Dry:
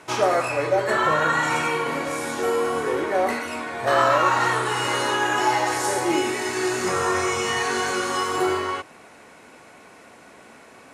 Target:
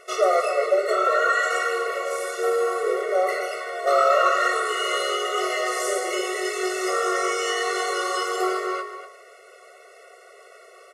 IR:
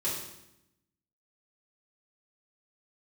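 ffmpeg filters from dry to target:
-filter_complex "[0:a]asplit=2[link_01][link_02];[link_02]adelay=244.9,volume=-9dB,highshelf=frequency=4000:gain=-5.51[link_03];[link_01][link_03]amix=inputs=2:normalize=0,asplit=2[link_04][link_05];[1:a]atrim=start_sample=2205,adelay=88[link_06];[link_05][link_06]afir=irnorm=-1:irlink=0,volume=-23.5dB[link_07];[link_04][link_07]amix=inputs=2:normalize=0,afftfilt=real='re*eq(mod(floor(b*sr/1024/370),2),1)':imag='im*eq(mod(floor(b*sr/1024/370),2),1)':win_size=1024:overlap=0.75,volume=1.5dB"

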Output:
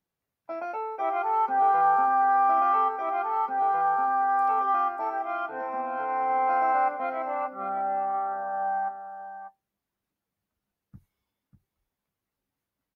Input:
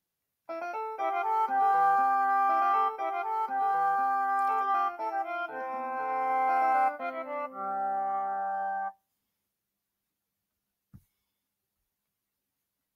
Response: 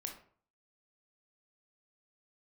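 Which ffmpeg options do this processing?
-af "highshelf=frequency=2800:gain=-11.5,aecho=1:1:592:0.299,volume=3.5dB"

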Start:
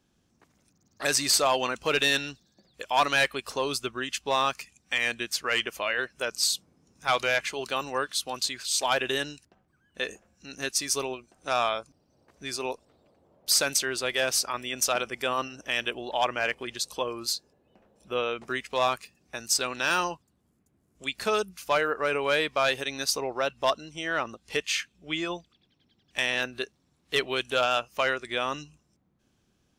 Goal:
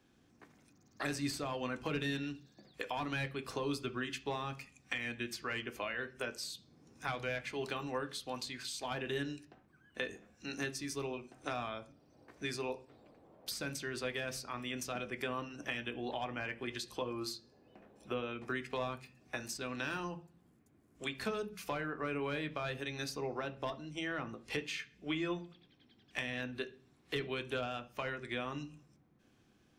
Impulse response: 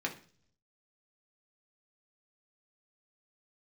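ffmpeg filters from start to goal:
-filter_complex "[0:a]acrossover=split=230[link_01][link_02];[link_02]acompressor=threshold=-39dB:ratio=10[link_03];[link_01][link_03]amix=inputs=2:normalize=0,asplit=2[link_04][link_05];[1:a]atrim=start_sample=2205,lowpass=5500[link_06];[link_05][link_06]afir=irnorm=-1:irlink=0,volume=-3.5dB[link_07];[link_04][link_07]amix=inputs=2:normalize=0,volume=-2.5dB"

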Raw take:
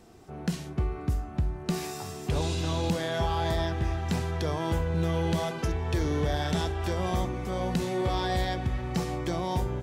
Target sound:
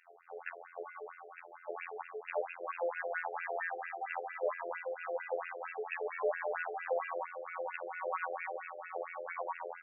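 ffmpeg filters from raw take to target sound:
ffmpeg -i in.wav -af "afftfilt=real='hypot(re,im)*cos(PI*b)':imag='0':win_size=2048:overlap=0.75,afftfilt=real='re*between(b*sr/1024,500*pow(2000/500,0.5+0.5*sin(2*PI*4.4*pts/sr))/1.41,500*pow(2000/500,0.5+0.5*sin(2*PI*4.4*pts/sr))*1.41)':imag='im*between(b*sr/1024,500*pow(2000/500,0.5+0.5*sin(2*PI*4.4*pts/sr))/1.41,500*pow(2000/500,0.5+0.5*sin(2*PI*4.4*pts/sr))*1.41)':win_size=1024:overlap=0.75,volume=6.5dB" out.wav

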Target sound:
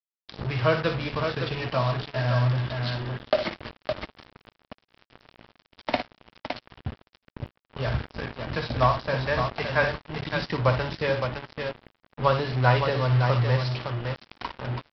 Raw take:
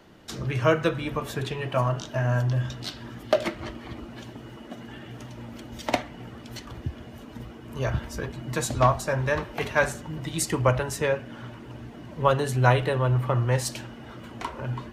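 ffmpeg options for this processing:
ffmpeg -i in.wav -af "equalizer=frequency=350:width=3.8:gain=-5.5,aecho=1:1:58|563:0.335|0.473,aresample=11025,acrusher=bits=4:mix=0:aa=0.5,aresample=44100,volume=-1dB" out.wav

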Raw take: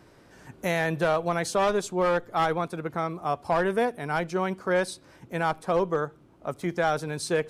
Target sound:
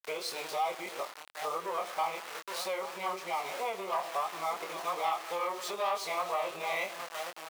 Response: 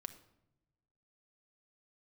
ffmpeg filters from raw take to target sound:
-filter_complex "[0:a]areverse,asuperstop=centerf=1600:order=20:qfactor=2.3,asplit=2[link_01][link_02];[link_02]adelay=816.3,volume=-15dB,highshelf=frequency=4000:gain=-18.4[link_03];[link_01][link_03]amix=inputs=2:normalize=0,asplit=2[link_04][link_05];[1:a]atrim=start_sample=2205,lowpass=4900[link_06];[link_05][link_06]afir=irnorm=-1:irlink=0,volume=10.5dB[link_07];[link_04][link_07]amix=inputs=2:normalize=0,acontrast=62,aeval=exprs='val(0)*gte(abs(val(0)),0.075)':channel_layout=same,flanger=delay=22.5:depth=3.8:speed=3,acompressor=threshold=-20dB:ratio=3,highpass=880,volume=-6dB"

